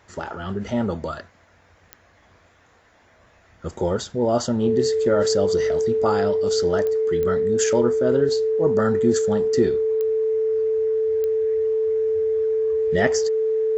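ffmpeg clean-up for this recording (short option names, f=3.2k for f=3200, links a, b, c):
-af "adeclick=t=4,bandreject=f=440:w=30"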